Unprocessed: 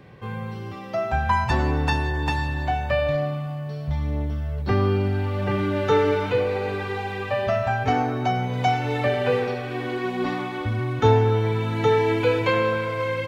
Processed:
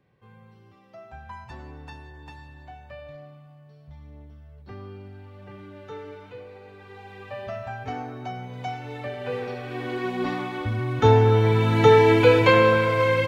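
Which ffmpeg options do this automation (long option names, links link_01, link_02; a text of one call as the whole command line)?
ffmpeg -i in.wav -af "volume=5dB,afade=type=in:start_time=6.75:duration=0.63:silence=0.375837,afade=type=in:start_time=9.17:duration=0.84:silence=0.334965,afade=type=in:start_time=10.83:duration=0.93:silence=0.473151" out.wav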